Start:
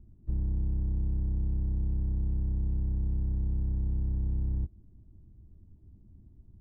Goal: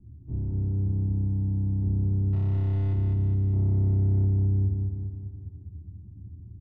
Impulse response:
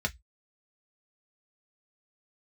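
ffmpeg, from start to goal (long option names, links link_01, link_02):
-filter_complex "[0:a]asettb=1/sr,asplit=3[link_01][link_02][link_03];[link_01]atrim=end=0.844[link_04];[link_02]atrim=start=0.84:end=1.83,asetpts=PTS-STARTPTS,afade=type=in:duration=0.004:curve=qsin,afade=type=out:start_time=0.986:duration=0.004:curve=qsin,highpass=frequency=64:poles=1[link_05];[link_03]atrim=start=1.826[link_06];[link_04][link_05]acrossfade=duration=0.004:curve1=hsin:curve2=qsin[link_07];[link_07][link_06]acrossfade=duration=0.004:curve1=qsin:curve2=hsin,asettb=1/sr,asplit=3[link_08][link_09][link_10];[link_08]atrim=end=3.534[link_11];[link_09]atrim=start=3.53:end=4.25,asetpts=PTS-STARTPTS,afade=type=in:duration=0.004:curve=qsin,afade=type=out:start_time=0.716:duration=0.004:curve=qsin,acontrast=42[link_12];[link_10]atrim=start=4.246[link_13];[link_11][link_12]acrossfade=duration=0.004:curve1=hsin:curve2=qsin[link_14];[link_14][link_13]acrossfade=duration=0.004:curve1=qsin:curve2=hsin,asoftclip=type=tanh:threshold=-31.5dB,asettb=1/sr,asplit=3[link_15][link_16][link_17];[link_15]atrim=end=2.334[link_18];[link_16]atrim=start=2.33:end=2.93,asetpts=PTS-STARTPTS,afade=type=in:duration=0.004:curve=qsin,afade=type=out:start_time=0.596:duration=0.004:curve=qsin,acrusher=bits=4:dc=4:mix=0:aa=0.000001[link_19];[link_17]atrim=start=2.926[link_20];[link_18][link_19]acrossfade=duration=0.004:curve1=hsin:curve2=qsin[link_21];[link_21][link_20]acrossfade=duration=0.004:curve1=qsin:curve2=hsin,adynamicsmooth=sensitivity=6:basefreq=680,aecho=1:1:205|410|615|820|1025|1230|1435|1640:0.668|0.381|0.217|0.124|0.0706|0.0402|0.0229|0.0131[link_22];[1:a]atrim=start_sample=2205,asetrate=61740,aresample=44100[link_23];[link_22][link_23]afir=irnorm=-1:irlink=0" -ar 16000 -c:a aac -b:a 64k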